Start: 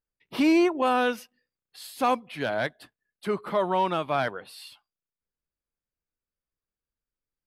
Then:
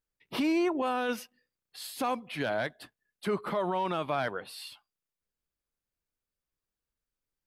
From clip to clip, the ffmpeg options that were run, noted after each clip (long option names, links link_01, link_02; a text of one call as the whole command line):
ffmpeg -i in.wav -af "alimiter=limit=-22dB:level=0:latency=1:release=45,volume=1dB" out.wav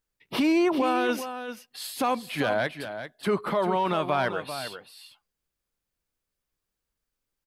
ffmpeg -i in.wav -af "aecho=1:1:393:0.316,volume=5dB" out.wav